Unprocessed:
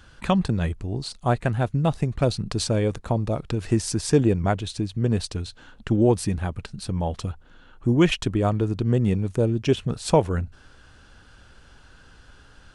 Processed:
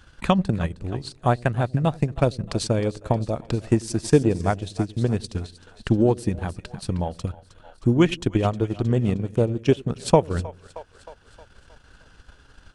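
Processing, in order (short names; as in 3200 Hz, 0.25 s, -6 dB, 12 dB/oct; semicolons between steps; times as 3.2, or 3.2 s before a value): split-band echo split 500 Hz, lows 89 ms, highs 0.312 s, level -12.5 dB; transient shaper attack +5 dB, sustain -8 dB; gain -1.5 dB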